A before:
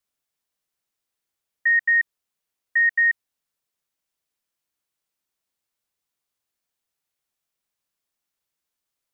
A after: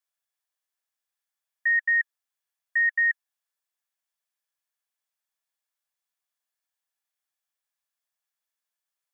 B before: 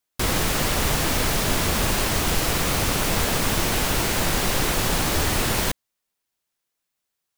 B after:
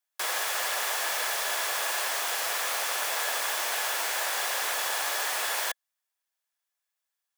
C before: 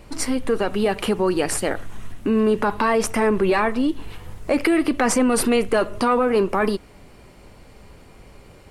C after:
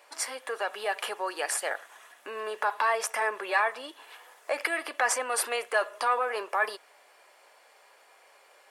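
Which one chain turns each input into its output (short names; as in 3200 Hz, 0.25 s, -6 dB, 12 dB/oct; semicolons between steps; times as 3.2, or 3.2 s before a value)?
HPF 600 Hz 24 dB/oct; bell 3600 Hz -2.5 dB; small resonant body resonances 1700/3400 Hz, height 8 dB, ringing for 30 ms; gain -4.5 dB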